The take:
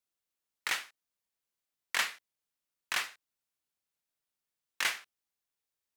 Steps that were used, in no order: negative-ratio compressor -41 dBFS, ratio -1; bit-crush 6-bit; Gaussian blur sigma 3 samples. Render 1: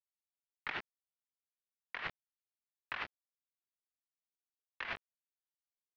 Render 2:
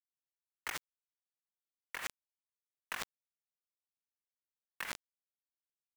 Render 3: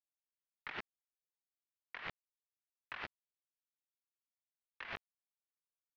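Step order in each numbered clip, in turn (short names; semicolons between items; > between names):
bit-crush > Gaussian blur > negative-ratio compressor; Gaussian blur > bit-crush > negative-ratio compressor; bit-crush > negative-ratio compressor > Gaussian blur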